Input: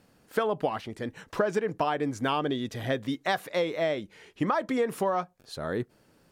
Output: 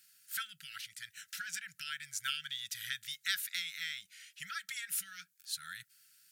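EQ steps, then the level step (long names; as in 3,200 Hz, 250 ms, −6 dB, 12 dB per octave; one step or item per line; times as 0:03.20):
linear-phase brick-wall band-stop 190–1,300 Hz
first difference
+7.5 dB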